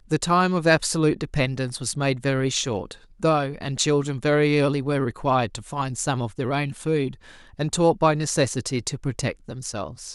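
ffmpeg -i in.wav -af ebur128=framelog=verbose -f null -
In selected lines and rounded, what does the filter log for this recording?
Integrated loudness:
  I:         -23.5 LUFS
  Threshold: -33.6 LUFS
Loudness range:
  LRA:         2.0 LU
  Threshold: -43.8 LUFS
  LRA low:   -24.9 LUFS
  LRA high:  -22.9 LUFS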